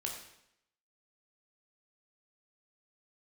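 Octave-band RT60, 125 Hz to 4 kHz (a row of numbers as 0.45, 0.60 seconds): 0.80, 0.80, 0.75, 0.75, 0.75, 0.75 seconds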